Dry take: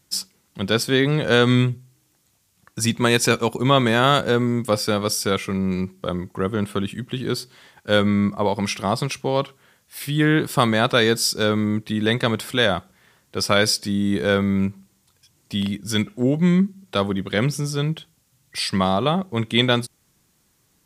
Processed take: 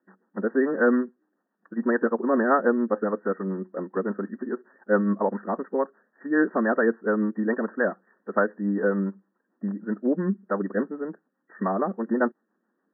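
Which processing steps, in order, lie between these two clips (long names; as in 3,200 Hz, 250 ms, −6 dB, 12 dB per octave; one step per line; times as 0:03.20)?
phase-vocoder stretch with locked phases 0.62×
linear-phase brick-wall band-pass 190–1,900 Hz
rotating-speaker cabinet horn 7 Hz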